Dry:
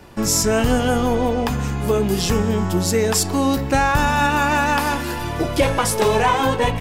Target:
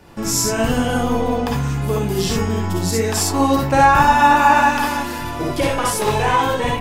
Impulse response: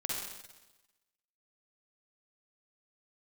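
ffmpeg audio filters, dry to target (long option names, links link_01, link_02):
-filter_complex "[0:a]asettb=1/sr,asplit=3[link_01][link_02][link_03];[link_01]atrim=end=3.164[link_04];[link_02]atrim=start=3.16:end=4.63,asetpts=PTS-STARTPTS,afade=type=in:duration=0.004:curve=qsin,afade=type=out:start_time=1.466:duration=0.004:curve=qsin,equalizer=frequency=860:width_type=o:width=1.9:gain=7[link_05];[link_03]atrim=start=4.626[link_06];[link_04][link_05]acrossfade=duration=0.004:curve1=hsin:curve2=qsin[link_07];[link_07][link_06]acrossfade=duration=0.004:curve1=qsin:curve2=hsin[link_08];[1:a]atrim=start_sample=2205,atrim=end_sample=3969,asetrate=43218,aresample=44100[link_09];[link_08][link_09]afir=irnorm=-1:irlink=0,volume=-2dB"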